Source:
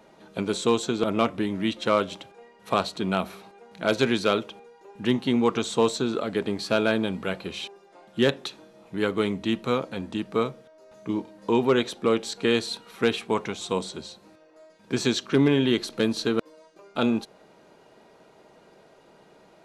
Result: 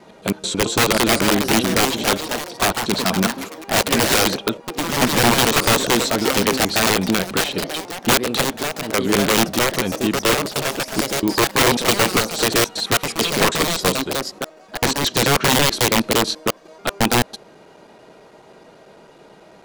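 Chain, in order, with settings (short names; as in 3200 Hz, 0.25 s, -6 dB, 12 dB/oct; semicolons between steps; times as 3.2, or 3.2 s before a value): slices in reverse order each 0.109 s, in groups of 2; wrapped overs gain 17.5 dB; echoes that change speed 0.566 s, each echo +3 st, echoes 3, each echo -6 dB; gain +8.5 dB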